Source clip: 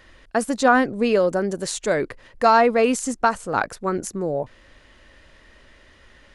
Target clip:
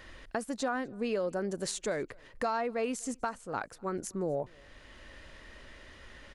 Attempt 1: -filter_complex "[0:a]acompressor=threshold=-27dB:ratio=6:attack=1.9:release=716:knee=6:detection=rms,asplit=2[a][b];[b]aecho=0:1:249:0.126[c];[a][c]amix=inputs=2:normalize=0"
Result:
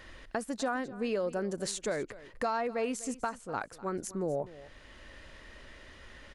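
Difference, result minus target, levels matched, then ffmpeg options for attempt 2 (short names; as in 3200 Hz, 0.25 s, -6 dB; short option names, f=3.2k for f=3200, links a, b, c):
echo-to-direct +10.5 dB
-filter_complex "[0:a]acompressor=threshold=-27dB:ratio=6:attack=1.9:release=716:knee=6:detection=rms,asplit=2[a][b];[b]aecho=0:1:249:0.0376[c];[a][c]amix=inputs=2:normalize=0"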